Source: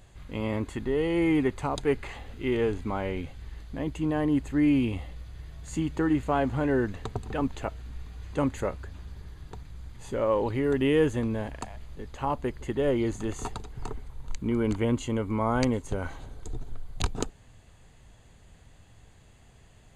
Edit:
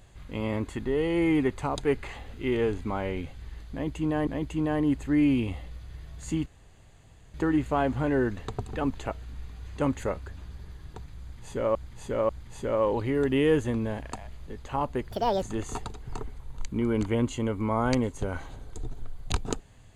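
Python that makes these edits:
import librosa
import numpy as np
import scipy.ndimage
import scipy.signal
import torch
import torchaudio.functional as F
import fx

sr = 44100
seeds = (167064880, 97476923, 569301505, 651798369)

y = fx.edit(x, sr, fx.repeat(start_s=3.72, length_s=0.55, count=2),
    fx.insert_room_tone(at_s=5.91, length_s=0.88),
    fx.repeat(start_s=9.78, length_s=0.54, count=3),
    fx.speed_span(start_s=12.6, length_s=0.52, speed=1.67), tone=tone)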